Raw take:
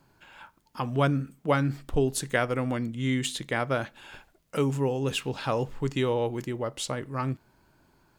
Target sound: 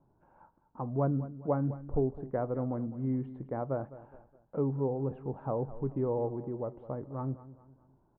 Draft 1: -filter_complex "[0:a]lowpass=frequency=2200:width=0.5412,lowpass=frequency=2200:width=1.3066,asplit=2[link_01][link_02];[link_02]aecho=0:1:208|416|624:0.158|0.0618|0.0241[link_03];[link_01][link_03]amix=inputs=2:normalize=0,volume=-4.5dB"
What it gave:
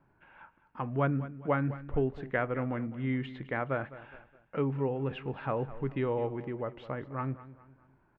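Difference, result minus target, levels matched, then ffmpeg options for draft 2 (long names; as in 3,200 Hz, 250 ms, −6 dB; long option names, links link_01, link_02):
2,000 Hz band +18.0 dB
-filter_complex "[0:a]lowpass=frequency=940:width=0.5412,lowpass=frequency=940:width=1.3066,asplit=2[link_01][link_02];[link_02]aecho=0:1:208|416|624:0.158|0.0618|0.0241[link_03];[link_01][link_03]amix=inputs=2:normalize=0,volume=-4.5dB"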